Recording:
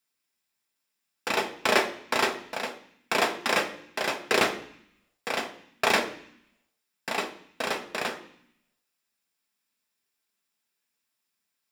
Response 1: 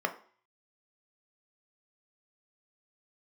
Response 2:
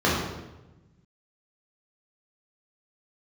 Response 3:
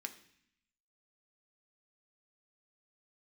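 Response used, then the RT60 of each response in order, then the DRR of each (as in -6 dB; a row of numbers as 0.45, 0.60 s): 3; 0.45, 1.0, 0.65 s; 5.0, -6.5, 5.5 dB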